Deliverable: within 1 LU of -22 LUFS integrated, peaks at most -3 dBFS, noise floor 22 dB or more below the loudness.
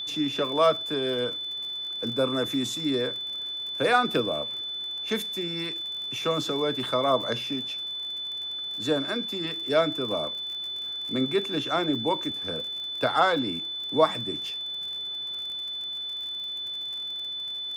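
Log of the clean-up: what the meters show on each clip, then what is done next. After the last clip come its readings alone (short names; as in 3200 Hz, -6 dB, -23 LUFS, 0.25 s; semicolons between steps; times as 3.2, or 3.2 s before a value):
ticks 45/s; steady tone 3500 Hz; tone level -31 dBFS; loudness -27.5 LUFS; peak -7.0 dBFS; loudness target -22.0 LUFS
-> de-click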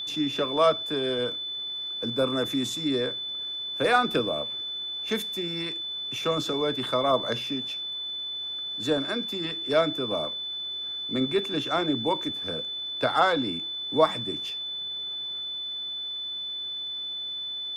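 ticks 0.11/s; steady tone 3500 Hz; tone level -31 dBFS
-> notch 3500 Hz, Q 30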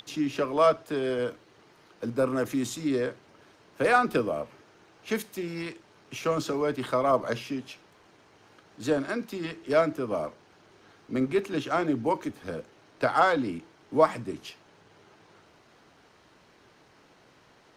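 steady tone none; loudness -28.5 LUFS; peak -6.5 dBFS; loudness target -22.0 LUFS
-> gain +6.5 dB; limiter -3 dBFS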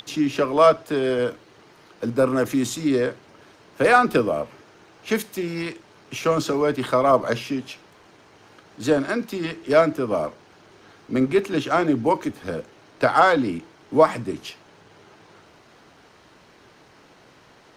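loudness -22.0 LUFS; peak -3.0 dBFS; noise floor -53 dBFS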